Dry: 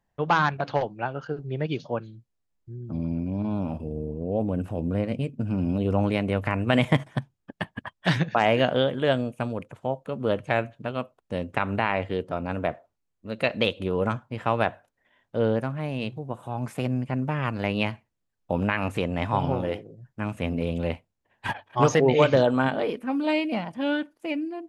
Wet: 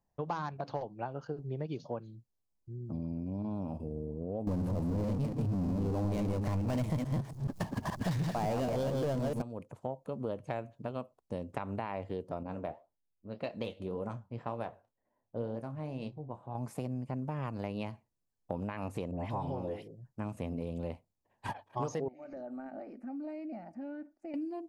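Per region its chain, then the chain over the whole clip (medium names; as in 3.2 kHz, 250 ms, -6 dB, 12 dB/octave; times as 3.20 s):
4.47–9.42 s: chunks repeated in reverse 143 ms, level -4.5 dB + power-law waveshaper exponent 0.5 + bass shelf 200 Hz +6.5 dB
12.43–16.55 s: level-controlled noise filter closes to 800 Hz, open at -23.5 dBFS + flange 1.9 Hz, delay 2.8 ms, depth 8.3 ms, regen +73% + doubling 26 ms -13 dB
19.11–19.88 s: peaking EQ 1.3 kHz -4 dB 0.31 oct + phase dispersion highs, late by 84 ms, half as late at 1.5 kHz
22.08–24.34 s: distance through air 120 m + compression, threshold -33 dBFS + static phaser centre 680 Hz, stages 8
whole clip: high-order bell 2.2 kHz -8.5 dB; compression 4:1, threshold -29 dBFS; trim -4.5 dB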